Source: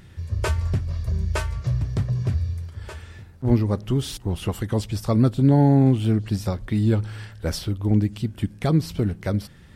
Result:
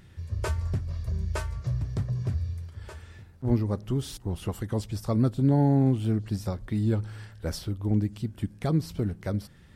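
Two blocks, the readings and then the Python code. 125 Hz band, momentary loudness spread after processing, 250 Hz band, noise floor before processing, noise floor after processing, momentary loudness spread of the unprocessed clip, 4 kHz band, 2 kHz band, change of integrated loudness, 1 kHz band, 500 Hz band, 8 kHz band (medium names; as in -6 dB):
-5.5 dB, 12 LU, -5.5 dB, -46 dBFS, -52 dBFS, 12 LU, -7.5 dB, -7.5 dB, -5.5 dB, -6.0 dB, -5.5 dB, -6.0 dB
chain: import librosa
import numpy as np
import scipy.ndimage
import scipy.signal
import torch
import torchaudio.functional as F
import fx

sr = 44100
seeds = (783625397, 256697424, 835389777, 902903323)

y = fx.dynamic_eq(x, sr, hz=2800.0, q=1.2, threshold_db=-50.0, ratio=4.0, max_db=-4)
y = y * 10.0 ** (-5.5 / 20.0)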